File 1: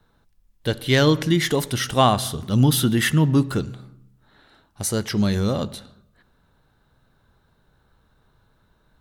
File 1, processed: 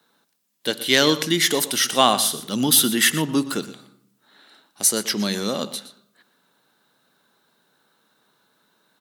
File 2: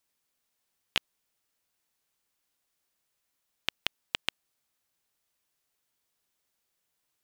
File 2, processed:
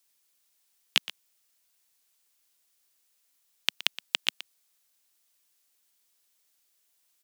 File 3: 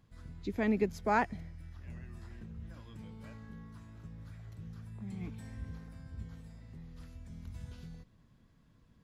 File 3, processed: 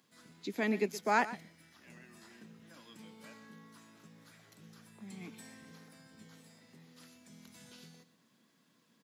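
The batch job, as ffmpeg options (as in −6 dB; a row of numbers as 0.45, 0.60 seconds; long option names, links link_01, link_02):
-filter_complex "[0:a]highpass=frequency=200:width=0.5412,highpass=frequency=200:width=1.3066,highshelf=frequency=2400:gain=11,asplit=2[link_01][link_02];[link_02]aecho=0:1:120:0.168[link_03];[link_01][link_03]amix=inputs=2:normalize=0,volume=-1.5dB"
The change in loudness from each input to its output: +1.0, +5.0, +4.5 LU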